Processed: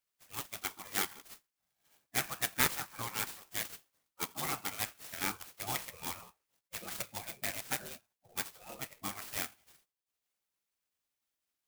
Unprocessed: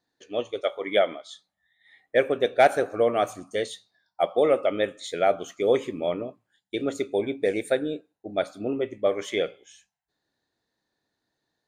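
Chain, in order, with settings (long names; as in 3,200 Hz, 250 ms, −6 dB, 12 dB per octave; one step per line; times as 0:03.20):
gate on every frequency bin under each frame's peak −20 dB weak
high-shelf EQ 3,100 Hz +10.5 dB
converter with an unsteady clock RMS 0.079 ms
level −2 dB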